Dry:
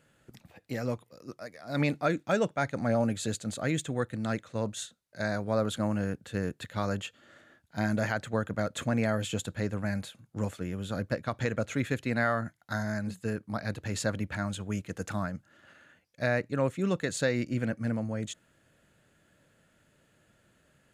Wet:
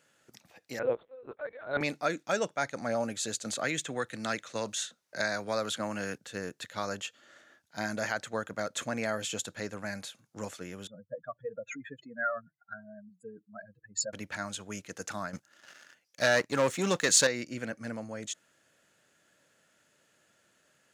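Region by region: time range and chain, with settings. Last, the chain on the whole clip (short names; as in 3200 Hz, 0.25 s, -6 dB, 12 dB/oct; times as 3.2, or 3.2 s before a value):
0.79–1.81 small resonant body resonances 500/1500 Hz, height 11 dB, ringing for 20 ms + LPC vocoder at 8 kHz pitch kept
3.44–6.18 dynamic EQ 2300 Hz, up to +4 dB, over -47 dBFS, Q 0.76 + three-band squash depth 70%
10.87–14.13 spectral contrast raised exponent 3.3 + HPF 520 Hz 6 dB/oct + comb 6.3 ms, depth 32%
15.33–17.27 high shelf 2300 Hz +4.5 dB + sample leveller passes 2
whole clip: HPF 510 Hz 6 dB/oct; bell 5800 Hz +7.5 dB 0.65 oct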